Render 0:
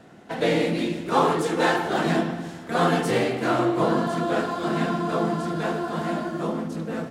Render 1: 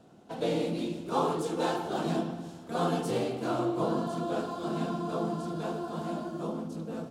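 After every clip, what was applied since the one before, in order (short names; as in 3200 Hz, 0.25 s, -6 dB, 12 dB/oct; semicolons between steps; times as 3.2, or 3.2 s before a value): bell 1900 Hz -13.5 dB 0.66 oct; gain -7 dB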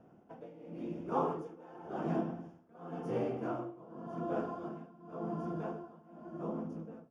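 tremolo 0.91 Hz, depth 92%; running mean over 11 samples; gain -3 dB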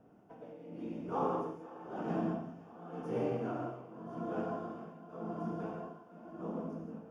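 thinning echo 0.511 s, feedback 76%, high-pass 370 Hz, level -19 dB; non-linear reverb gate 0.21 s flat, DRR 0 dB; gain -3 dB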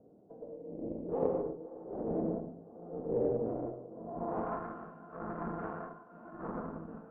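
added harmonics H 3 -9 dB, 5 -19 dB, 8 -25 dB, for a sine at -21 dBFS; low-pass sweep 510 Hz -> 1400 Hz, 3.88–4.67; gain +4.5 dB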